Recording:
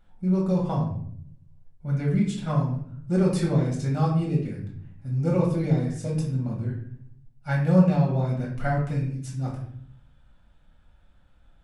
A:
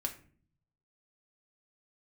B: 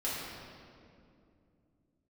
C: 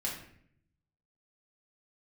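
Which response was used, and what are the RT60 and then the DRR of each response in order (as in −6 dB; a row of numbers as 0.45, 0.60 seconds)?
C; 0.45, 2.5, 0.65 seconds; 2.0, −9.0, −4.0 decibels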